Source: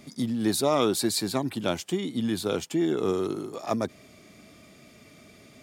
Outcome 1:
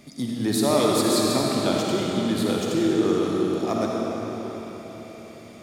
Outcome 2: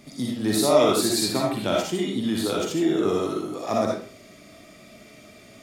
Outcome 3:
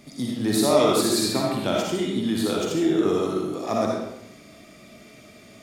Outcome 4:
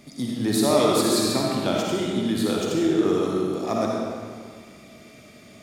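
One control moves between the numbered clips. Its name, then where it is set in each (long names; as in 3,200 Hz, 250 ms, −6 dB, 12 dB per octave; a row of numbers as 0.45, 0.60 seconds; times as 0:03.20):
comb and all-pass reverb, RT60: 4.5, 0.41, 0.88, 1.9 seconds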